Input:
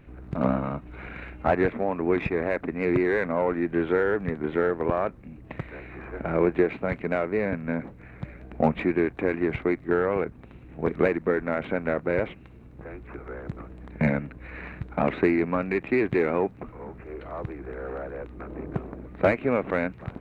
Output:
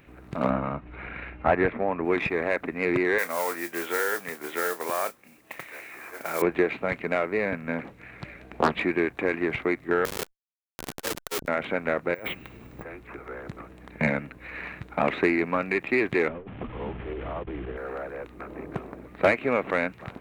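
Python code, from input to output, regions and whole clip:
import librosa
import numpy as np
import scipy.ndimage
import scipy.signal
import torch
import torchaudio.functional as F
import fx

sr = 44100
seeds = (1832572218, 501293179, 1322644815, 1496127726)

y = fx.chain(x, sr, fx.lowpass(hz=2600.0, slope=12),
    fx.low_shelf(hz=100.0, db=9.0), at=(0.5, 2.05))
y = fx.chain(y, sr, fx.highpass(hz=770.0, slope=6),
    fx.mod_noise(seeds[0], snr_db=19),
    fx.doubler(ms=29.0, db=-13), at=(3.18, 6.42))
y = fx.chain(y, sr, fx.peak_eq(hz=3300.0, db=3.5, octaves=1.5),
    fx.doppler_dist(depth_ms=0.78), at=(7.78, 8.79))
y = fx.chain(y, sr, fx.high_shelf(hz=3400.0, db=-12.0),
    fx.schmitt(flips_db=-31.0),
    fx.transformer_sat(knee_hz=260.0), at=(10.05, 11.48))
y = fx.chain(y, sr, fx.resample_bad(factor=2, down='filtered', up='hold'),
    fx.over_compress(threshold_db=-36.0, ratio=-1.0), at=(12.14, 12.83))
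y = fx.chain(y, sr, fx.delta_mod(bps=16000, step_db=-41.5),
    fx.tilt_eq(slope=-3.0),
    fx.over_compress(threshold_db=-31.0, ratio=-1.0), at=(16.28, 17.77))
y = fx.tilt_eq(y, sr, slope=2.5)
y = fx.notch(y, sr, hz=1500.0, q=28.0)
y = y * 10.0 ** (2.0 / 20.0)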